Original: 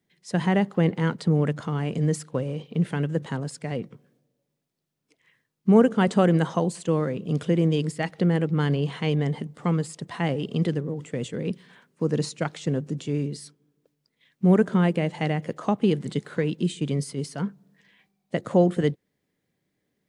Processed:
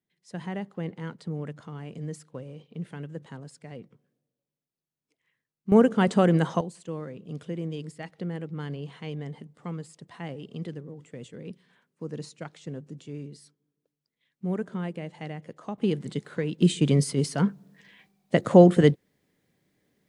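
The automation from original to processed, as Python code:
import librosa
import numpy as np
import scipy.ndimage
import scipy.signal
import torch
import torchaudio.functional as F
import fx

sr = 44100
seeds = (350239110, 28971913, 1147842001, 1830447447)

y = fx.gain(x, sr, db=fx.steps((0.0, -12.0), (5.72, -1.0), (6.61, -11.5), (15.78, -4.0), (16.62, 5.0)))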